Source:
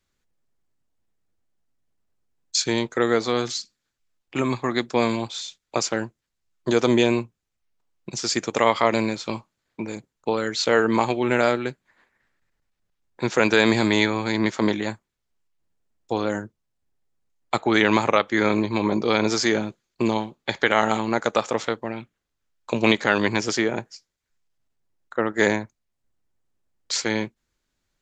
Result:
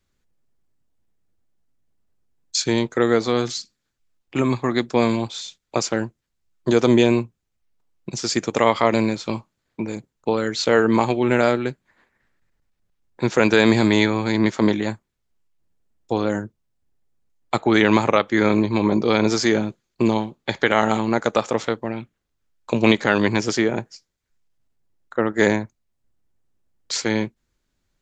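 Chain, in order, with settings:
low-shelf EQ 440 Hz +5.5 dB

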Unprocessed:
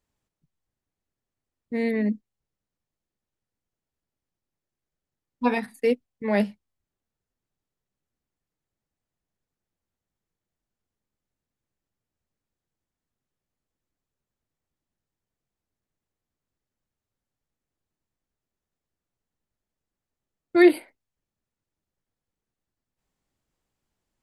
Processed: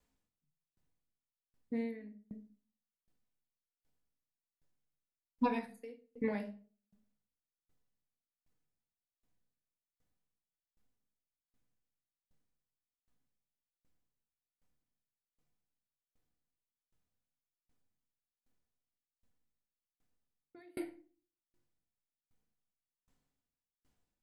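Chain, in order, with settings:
downward compressor 4 to 1, threshold −30 dBFS, peak gain reduction 16.5 dB
rectangular room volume 860 cubic metres, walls furnished, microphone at 1.9 metres
tremolo with a ramp in dB decaying 1.3 Hz, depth 36 dB
level +1.5 dB

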